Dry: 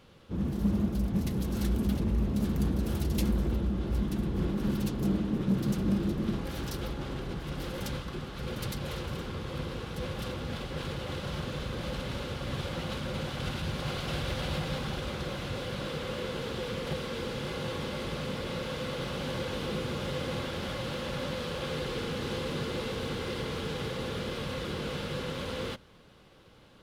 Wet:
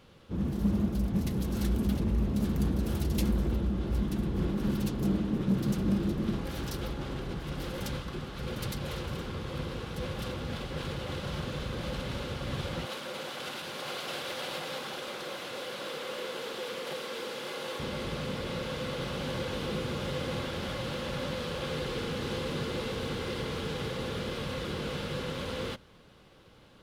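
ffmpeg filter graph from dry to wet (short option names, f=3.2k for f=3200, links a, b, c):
-filter_complex "[0:a]asettb=1/sr,asplit=3[a][b][c];[a]atrim=end=12.854[d];[b]atrim=start=12.85:end=17.8,asetpts=PTS-STARTPTS,afade=t=in:d=0.004:c=qsin,afade=t=out:st=4.946:d=0.004:c=qsin,highpass=380,highshelf=f=10k:g=6[e];[c]atrim=start=17.796[f];[d][e]acrossfade=d=0.004:c1=hsin:c2=qsin[g];[g][f]acrossfade=d=0.004:c1=qsin:c2=hsin"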